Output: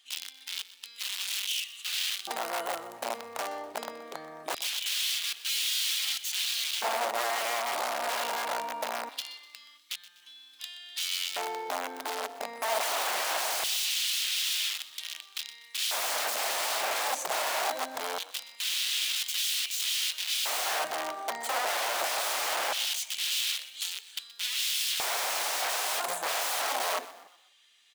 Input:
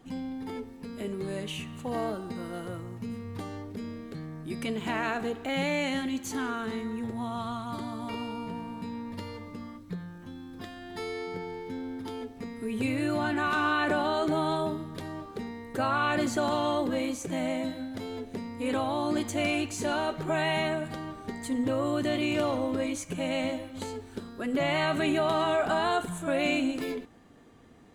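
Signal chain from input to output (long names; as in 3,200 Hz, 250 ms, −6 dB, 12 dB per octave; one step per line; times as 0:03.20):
wrap-around overflow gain 30.5 dB
auto-filter high-pass square 0.22 Hz 680–3,200 Hz
echo with shifted repeats 124 ms, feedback 43%, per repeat +33 Hz, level −17 dB
level +3.5 dB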